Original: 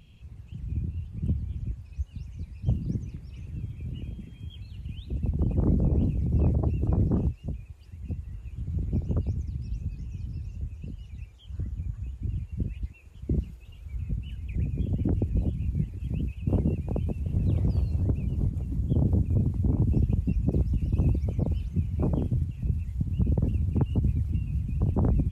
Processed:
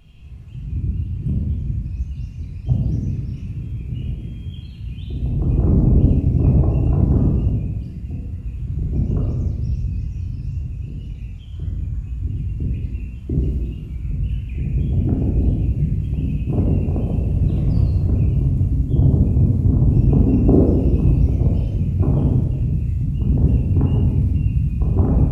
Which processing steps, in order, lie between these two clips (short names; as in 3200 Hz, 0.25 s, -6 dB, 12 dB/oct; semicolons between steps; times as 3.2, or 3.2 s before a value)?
20.07–20.69 band shelf 590 Hz +12 dB 3 oct; shoebox room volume 1100 m³, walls mixed, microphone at 3.2 m